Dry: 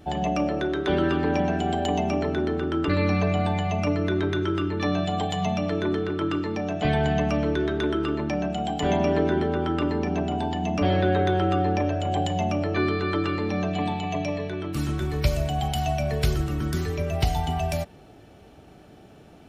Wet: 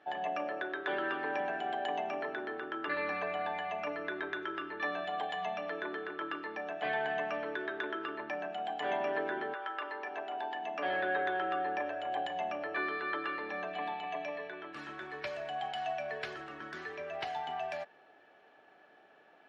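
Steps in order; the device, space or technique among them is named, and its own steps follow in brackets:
tin-can telephone (band-pass filter 670–2,500 Hz; hollow resonant body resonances 1,700 Hz, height 17 dB, ringing for 70 ms)
0:09.53–0:10.84: high-pass filter 750 Hz → 240 Hz 12 dB per octave
level −5 dB

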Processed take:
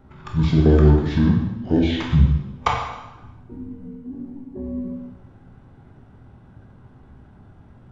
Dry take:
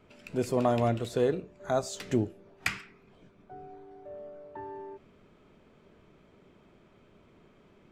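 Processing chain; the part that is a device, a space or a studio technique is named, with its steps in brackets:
monster voice (pitch shifter −8 semitones; formants moved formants −5 semitones; low-shelf EQ 170 Hz +4 dB; convolution reverb RT60 1.0 s, pre-delay 14 ms, DRR −0.5 dB)
level +8 dB

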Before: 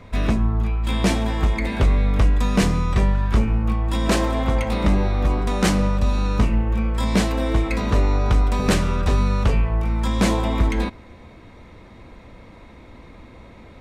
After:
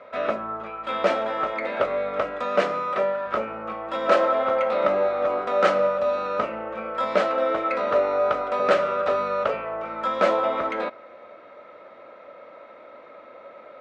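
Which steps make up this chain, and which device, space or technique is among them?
tin-can telephone (band-pass filter 490–2,800 Hz; hollow resonant body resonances 580/1,300 Hz, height 16 dB, ringing for 35 ms)
0:02.44–0:03.26: high-pass filter 150 Hz 24 dB per octave
level −1.5 dB

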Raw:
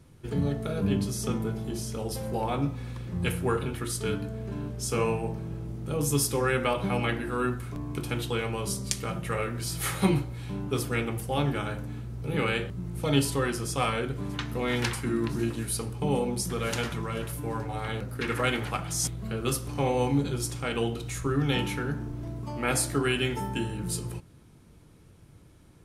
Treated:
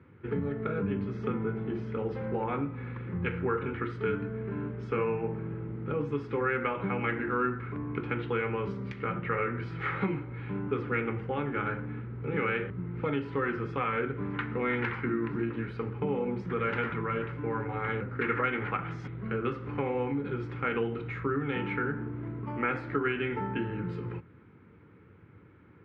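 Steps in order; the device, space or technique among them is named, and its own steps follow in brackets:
bass amplifier (downward compressor 5 to 1, threshold −28 dBFS, peak gain reduction 10 dB; loudspeaker in its box 86–2,300 Hz, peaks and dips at 140 Hz −6 dB, 440 Hz +4 dB, 660 Hz −10 dB, 1,400 Hz +6 dB, 2,100 Hz +5 dB)
level +1.5 dB

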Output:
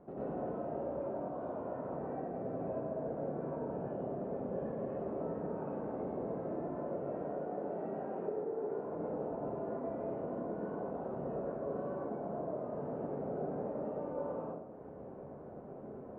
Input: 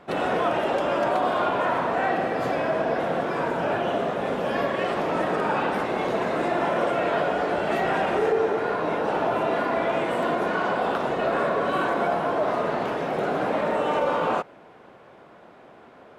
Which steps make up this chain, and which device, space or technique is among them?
0:07.18–0:08.76: high-pass filter 180 Hz 12 dB per octave
television next door (downward compressor 5 to 1, threshold −39 dBFS, peak gain reduction 18 dB; low-pass filter 530 Hz 12 dB per octave; convolution reverb RT60 0.90 s, pre-delay 87 ms, DRR −7.5 dB)
level −4.5 dB

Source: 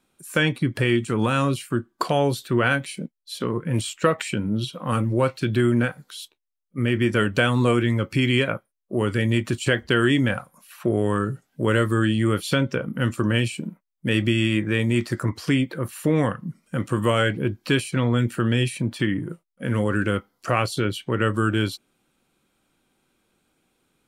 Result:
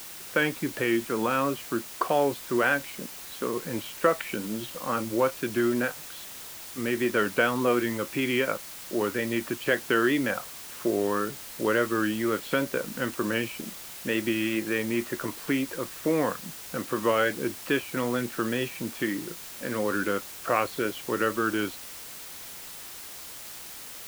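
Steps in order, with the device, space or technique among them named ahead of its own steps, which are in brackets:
wax cylinder (band-pass filter 300–2,300 Hz; tape wow and flutter; white noise bed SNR 13 dB)
level −1.5 dB

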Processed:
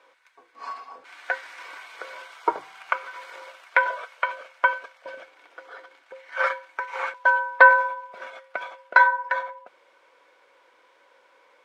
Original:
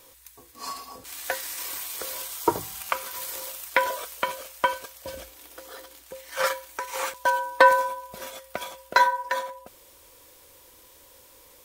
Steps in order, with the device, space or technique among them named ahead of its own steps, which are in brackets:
0:03.13–0:04.30: high-pass filter 120 Hz → 500 Hz 12 dB per octave
tin-can telephone (band-pass filter 590–2,000 Hz; hollow resonant body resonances 1,500/2,200 Hz, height 10 dB, ringing for 35 ms)
level +2 dB

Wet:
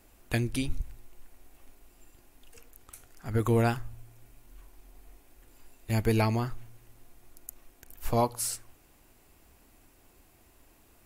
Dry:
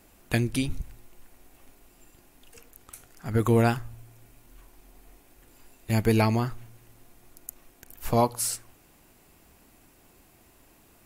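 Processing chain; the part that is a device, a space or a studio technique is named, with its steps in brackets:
low shelf boost with a cut just above (low-shelf EQ 69 Hz +6.5 dB; parametric band 170 Hz −5 dB 0.62 octaves)
level −3.5 dB

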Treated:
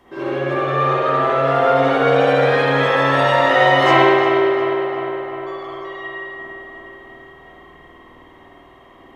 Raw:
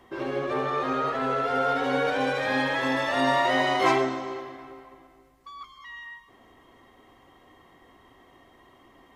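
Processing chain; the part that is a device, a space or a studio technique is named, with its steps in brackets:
dub delay into a spring reverb (feedback echo with a low-pass in the loop 355 ms, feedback 67%, low-pass 3,600 Hz, level −8 dB; spring reverb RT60 1.5 s, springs 51 ms, chirp 50 ms, DRR −7.5 dB)
level +1 dB

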